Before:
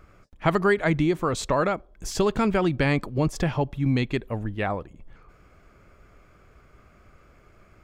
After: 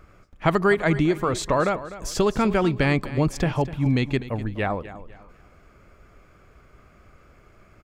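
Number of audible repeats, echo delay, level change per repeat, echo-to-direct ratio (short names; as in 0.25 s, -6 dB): 2, 0.25 s, -10.0 dB, -14.5 dB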